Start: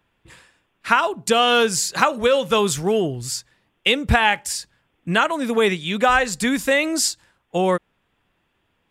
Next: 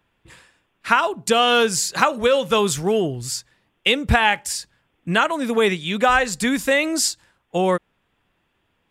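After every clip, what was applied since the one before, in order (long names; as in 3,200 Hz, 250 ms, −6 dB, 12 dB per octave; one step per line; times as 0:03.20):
no processing that can be heard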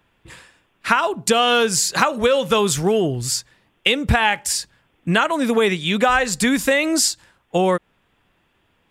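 downward compressor 2.5 to 1, threshold −20 dBFS, peak gain reduction 6.5 dB
level +5 dB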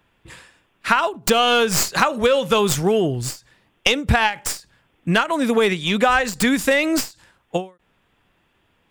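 stylus tracing distortion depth 0.054 ms
every ending faded ahead of time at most 210 dB per second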